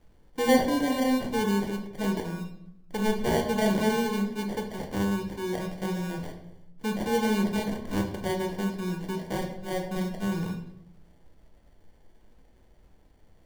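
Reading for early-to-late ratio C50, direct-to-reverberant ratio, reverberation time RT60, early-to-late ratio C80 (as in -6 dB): 8.0 dB, 2.0 dB, 0.75 s, 10.5 dB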